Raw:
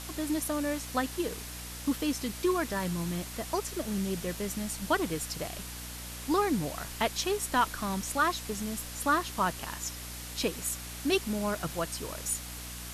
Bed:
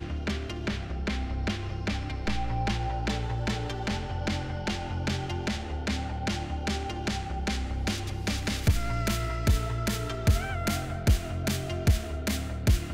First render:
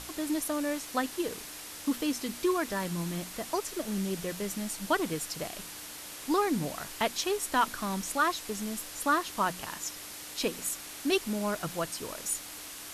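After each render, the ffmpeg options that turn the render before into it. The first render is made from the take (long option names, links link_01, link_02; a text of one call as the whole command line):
ffmpeg -i in.wav -af "bandreject=frequency=60:width_type=h:width=6,bandreject=frequency=120:width_type=h:width=6,bandreject=frequency=180:width_type=h:width=6,bandreject=frequency=240:width_type=h:width=6" out.wav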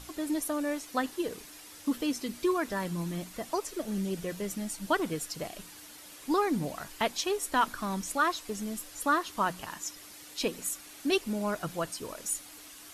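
ffmpeg -i in.wav -af "afftdn=noise_reduction=8:noise_floor=-44" out.wav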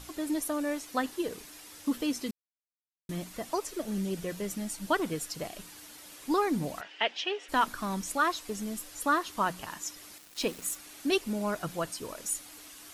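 ffmpeg -i in.wav -filter_complex "[0:a]asplit=3[link_01][link_02][link_03];[link_01]afade=type=out:start_time=6.8:duration=0.02[link_04];[link_02]highpass=450,equalizer=frequency=1100:width_type=q:width=4:gain=-8,equalizer=frequency=1900:width_type=q:width=4:gain=4,equalizer=frequency=2900:width_type=q:width=4:gain=9,equalizer=frequency=4200:width_type=q:width=4:gain=-6,lowpass=frequency=4500:width=0.5412,lowpass=frequency=4500:width=1.3066,afade=type=in:start_time=6.8:duration=0.02,afade=type=out:start_time=7.48:duration=0.02[link_05];[link_03]afade=type=in:start_time=7.48:duration=0.02[link_06];[link_04][link_05][link_06]amix=inputs=3:normalize=0,asettb=1/sr,asplit=3[link_07][link_08][link_09];[link_07]atrim=end=10.184[link_10];[link_08]atrim=start=10.18:end=10.76,asetpts=PTS-STARTPTS,afade=type=in:duration=0.004:curve=qsin,afade=type=out:start_time=0.576:duration=0.004:curve=qsin,aeval=exprs='val(0)*gte(abs(val(0)),0.00668)':channel_layout=same[link_11];[link_09]atrim=start=10.756[link_12];[link_10][link_11]acrossfade=duration=0.004:curve1=hsin:curve2=qsin[link_13];[link_13][link_12]acrossfade=duration=0.004:curve1=qsin:curve2=hsin,asplit=3[link_14][link_15][link_16];[link_14]atrim=end=2.31,asetpts=PTS-STARTPTS,afade=type=out:start_time=2.306:duration=0.004:curve=hsin[link_17];[link_15]atrim=start=2.31:end=3.09,asetpts=PTS-STARTPTS,volume=0[link_18];[link_16]atrim=start=3.09,asetpts=PTS-STARTPTS,afade=type=in:duration=0.004:curve=hsin[link_19];[link_17][link_18][link_19]concat=n=3:v=0:a=1" out.wav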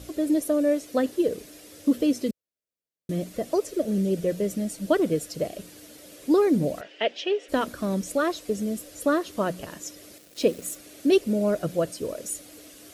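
ffmpeg -i in.wav -af "highpass=47,lowshelf=frequency=710:width_type=q:width=3:gain=7" out.wav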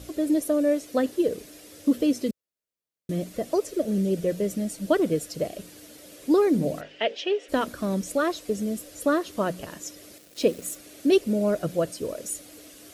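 ffmpeg -i in.wav -filter_complex "[0:a]asettb=1/sr,asplit=3[link_01][link_02][link_03];[link_01]atrim=end=6.524[link_04];[link_02]atrim=start=6.52:end=7.15,asetpts=PTS-STARTPTS,afade=type=in:duration=0.004:curve=qsin,afade=type=out:start_time=0.626:duration=0.004:curve=qsin,bandreject=frequency=51:width_type=h:width=4,bandreject=frequency=102:width_type=h:width=4,bandreject=frequency=153:width_type=h:width=4,bandreject=frequency=204:width_type=h:width=4,bandreject=frequency=255:width_type=h:width=4,bandreject=frequency=306:width_type=h:width=4,bandreject=frequency=357:width_type=h:width=4,bandreject=frequency=408:width_type=h:width=4,bandreject=frequency=459:width_type=h:width=4,bandreject=frequency=510:width_type=h:width=4,bandreject=frequency=561:width_type=h:width=4[link_05];[link_03]atrim=start=7.146[link_06];[link_04][link_05]acrossfade=duration=0.004:curve1=hsin:curve2=qsin[link_07];[link_07][link_06]acrossfade=duration=0.004:curve1=qsin:curve2=hsin" out.wav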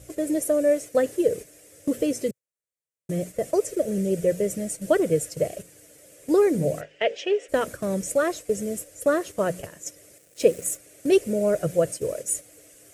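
ffmpeg -i in.wav -af "agate=range=-7dB:threshold=-36dB:ratio=16:detection=peak,equalizer=frequency=125:width_type=o:width=1:gain=8,equalizer=frequency=250:width_type=o:width=1:gain=-8,equalizer=frequency=500:width_type=o:width=1:gain=7,equalizer=frequency=1000:width_type=o:width=1:gain=-5,equalizer=frequency=2000:width_type=o:width=1:gain=5,equalizer=frequency=4000:width_type=o:width=1:gain=-8,equalizer=frequency=8000:width_type=o:width=1:gain=9" out.wav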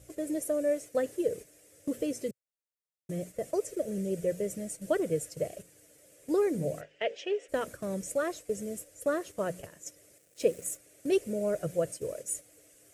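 ffmpeg -i in.wav -af "volume=-8dB" out.wav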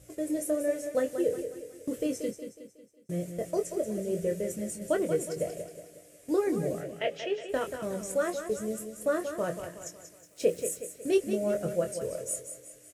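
ffmpeg -i in.wav -filter_complex "[0:a]asplit=2[link_01][link_02];[link_02]adelay=23,volume=-6.5dB[link_03];[link_01][link_03]amix=inputs=2:normalize=0,asplit=2[link_04][link_05];[link_05]aecho=0:1:183|366|549|732|915:0.355|0.163|0.0751|0.0345|0.0159[link_06];[link_04][link_06]amix=inputs=2:normalize=0" out.wav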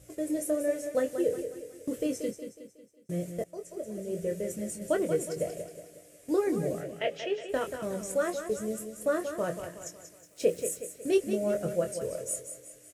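ffmpeg -i in.wav -filter_complex "[0:a]asplit=2[link_01][link_02];[link_01]atrim=end=3.44,asetpts=PTS-STARTPTS,afade=type=out:start_time=3.436:duration=0.004:curve=hsin:silence=0.141254[link_03];[link_02]atrim=start=3.44,asetpts=PTS-STARTPTS,afade=type=in:duration=1.56:curve=qsin:silence=0.141254[link_04];[link_03][link_04]concat=n=2:v=0:a=1" out.wav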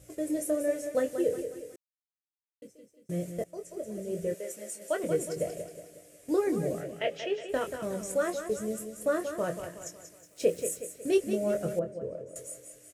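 ffmpeg -i in.wav -filter_complex "[0:a]asettb=1/sr,asplit=3[link_01][link_02][link_03];[link_01]atrim=end=4.344[link_04];[link_02]atrim=start=4.34:end=5.04,asetpts=PTS-STARTPTS,afade=type=in:duration=0.004:curve=qsin,afade=type=out:start_time=0.696:duration=0.004:curve=qsin,highpass=530[link_05];[link_03]atrim=start=5.036[link_06];[link_04][link_05]acrossfade=duration=0.004:curve1=hsin:curve2=qsin[link_07];[link_07][link_06]acrossfade=duration=0.004:curve1=qsin:curve2=hsin,asettb=1/sr,asplit=3[link_08][link_09][link_10];[link_08]atrim=end=11.794[link_11];[link_09]atrim=start=11.79:end=12.36,asetpts=PTS-STARTPTS,afade=type=in:duration=0.004:curve=qsin,afade=type=out:start_time=0.566:duration=0.004:curve=qsin,bandpass=frequency=220:width_type=q:width=0.51[link_12];[link_10]atrim=start=12.356[link_13];[link_11][link_12]acrossfade=duration=0.004:curve1=hsin:curve2=qsin[link_14];[link_14][link_13]acrossfade=duration=0.004:curve1=qsin:curve2=hsin,asplit=3[link_15][link_16][link_17];[link_15]atrim=end=1.76,asetpts=PTS-STARTPTS,afade=type=out:start_time=1.756:duration=0.004:curve=hsin[link_18];[link_16]atrim=start=1.76:end=2.62,asetpts=PTS-STARTPTS,volume=0[link_19];[link_17]atrim=start=2.62,asetpts=PTS-STARTPTS,afade=type=in:duration=0.004:curve=hsin[link_20];[link_18][link_19][link_20]concat=n=3:v=0:a=1" out.wav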